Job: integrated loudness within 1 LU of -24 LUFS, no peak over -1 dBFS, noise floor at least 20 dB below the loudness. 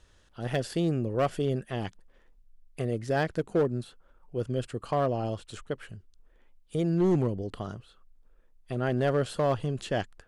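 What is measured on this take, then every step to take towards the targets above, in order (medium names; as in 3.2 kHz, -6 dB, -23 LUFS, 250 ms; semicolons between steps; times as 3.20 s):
clipped samples 0.8%; clipping level -19.0 dBFS; loudness -30.0 LUFS; peak level -19.0 dBFS; loudness target -24.0 LUFS
-> clip repair -19 dBFS; trim +6 dB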